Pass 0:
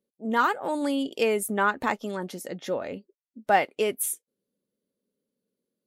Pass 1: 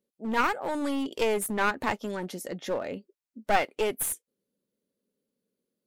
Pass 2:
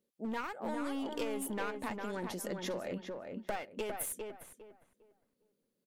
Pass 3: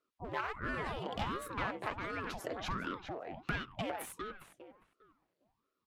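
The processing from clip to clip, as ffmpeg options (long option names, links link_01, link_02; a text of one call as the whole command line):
ffmpeg -i in.wav -af "aeval=exprs='clip(val(0),-1,0.0398)':channel_layout=same" out.wav
ffmpeg -i in.wav -filter_complex "[0:a]acompressor=threshold=-36dB:ratio=6,asplit=2[link_01][link_02];[link_02]adelay=404,lowpass=frequency=2100:poles=1,volume=-4dB,asplit=2[link_03][link_04];[link_04]adelay=404,lowpass=frequency=2100:poles=1,volume=0.27,asplit=2[link_05][link_06];[link_06]adelay=404,lowpass=frequency=2100:poles=1,volume=0.27,asplit=2[link_07][link_08];[link_08]adelay=404,lowpass=frequency=2100:poles=1,volume=0.27[link_09];[link_01][link_03][link_05][link_07][link_09]amix=inputs=5:normalize=0" out.wav
ffmpeg -i in.wav -filter_complex "[0:a]acrossover=split=310 4700:gain=0.0891 1 0.224[link_01][link_02][link_03];[link_01][link_02][link_03]amix=inputs=3:normalize=0,aeval=exprs='val(0)*sin(2*PI*470*n/s+470*0.85/1.4*sin(2*PI*1.4*n/s))':channel_layout=same,volume=5dB" out.wav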